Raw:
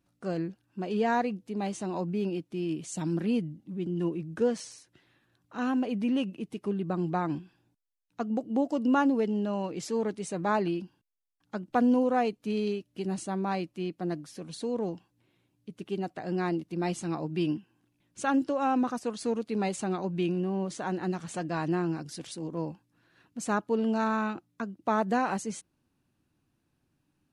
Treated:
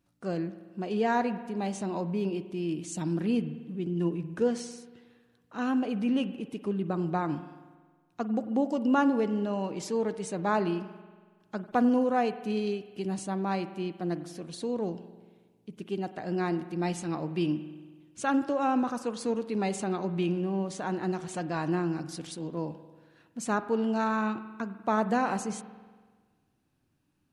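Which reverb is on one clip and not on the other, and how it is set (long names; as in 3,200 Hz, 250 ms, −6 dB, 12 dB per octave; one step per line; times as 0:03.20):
spring reverb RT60 1.5 s, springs 46 ms, chirp 65 ms, DRR 12 dB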